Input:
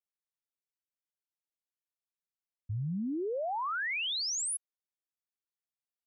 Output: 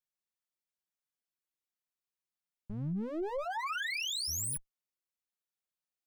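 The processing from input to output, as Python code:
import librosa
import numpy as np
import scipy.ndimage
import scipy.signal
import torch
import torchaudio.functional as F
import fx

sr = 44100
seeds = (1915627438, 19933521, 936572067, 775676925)

y = fx.lower_of_two(x, sr, delay_ms=5.5)
y = fx.highpass(y, sr, hz=640.0, slope=24, at=(3.44, 4.27), fade=0.02)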